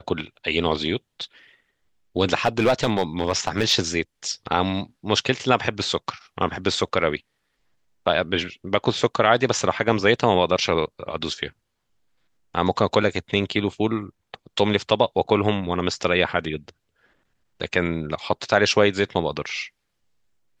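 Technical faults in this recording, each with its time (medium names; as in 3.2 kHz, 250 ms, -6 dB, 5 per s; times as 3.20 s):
2.45–3.73 s: clipped -13 dBFS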